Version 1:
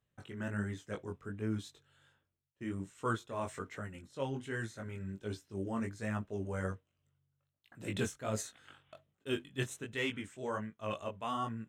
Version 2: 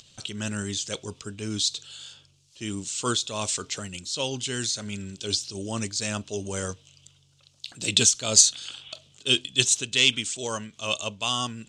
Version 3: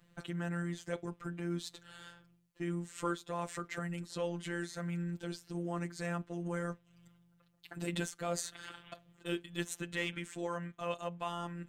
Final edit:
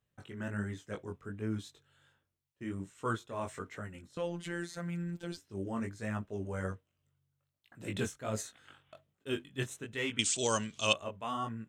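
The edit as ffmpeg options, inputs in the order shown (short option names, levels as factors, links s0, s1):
-filter_complex "[0:a]asplit=3[s0][s1][s2];[s0]atrim=end=4.172[s3];[2:a]atrim=start=4.168:end=5.372[s4];[s1]atrim=start=5.368:end=10.192[s5];[1:a]atrim=start=10.188:end=10.932[s6];[s2]atrim=start=10.928[s7];[s3][s4]acrossfade=d=0.004:c1=hsin:c2=hsin[s8];[s8][s5]acrossfade=d=0.004:c1=hsin:c2=hsin[s9];[s9][s6]acrossfade=d=0.004:c1=hsin:c2=hsin[s10];[s10][s7]acrossfade=d=0.004:c1=hsin:c2=hsin"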